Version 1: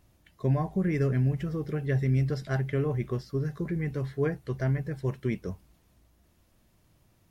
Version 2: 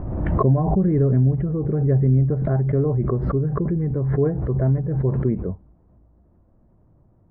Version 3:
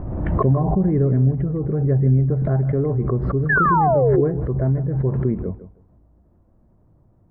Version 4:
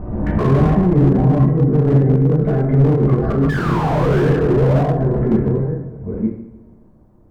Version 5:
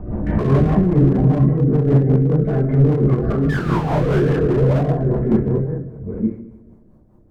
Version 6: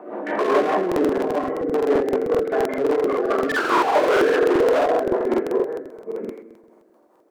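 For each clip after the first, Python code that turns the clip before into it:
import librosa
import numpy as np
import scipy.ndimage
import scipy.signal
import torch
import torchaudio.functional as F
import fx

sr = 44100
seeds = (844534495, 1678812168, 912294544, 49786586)

y1 = scipy.signal.sosfilt(scipy.signal.bessel(4, 730.0, 'lowpass', norm='mag', fs=sr, output='sos'), x)
y1 = fx.pre_swell(y1, sr, db_per_s=31.0)
y1 = F.gain(torch.from_numpy(y1), 8.0).numpy()
y2 = fx.spec_paint(y1, sr, seeds[0], shape='fall', start_s=3.49, length_s=0.72, low_hz=330.0, high_hz=1800.0, level_db=-17.0)
y2 = fx.echo_feedback(y2, sr, ms=157, feedback_pct=18, wet_db=-14)
y3 = fx.reverse_delay(y2, sr, ms=482, wet_db=-2.5)
y3 = fx.rev_double_slope(y3, sr, seeds[1], early_s=0.68, late_s=2.0, knee_db=-18, drr_db=-5.0)
y3 = fx.slew_limit(y3, sr, full_power_hz=97.0)
y3 = F.gain(torch.from_numpy(y3), -1.0).numpy()
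y4 = fx.rotary(y3, sr, hz=5.0)
y5 = scipy.signal.sosfilt(scipy.signal.bessel(6, 550.0, 'highpass', norm='mag', fs=sr, output='sos'), y4)
y5 = fx.buffer_crackle(y5, sr, first_s=0.87, period_s=0.13, block=2048, kind='repeat')
y5 = F.gain(torch.from_numpy(y5), 7.5).numpy()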